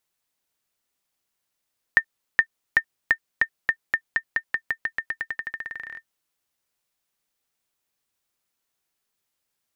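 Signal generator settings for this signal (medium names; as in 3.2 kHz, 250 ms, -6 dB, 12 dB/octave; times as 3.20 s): bouncing ball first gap 0.42 s, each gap 0.9, 1.81 kHz, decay 74 ms -4.5 dBFS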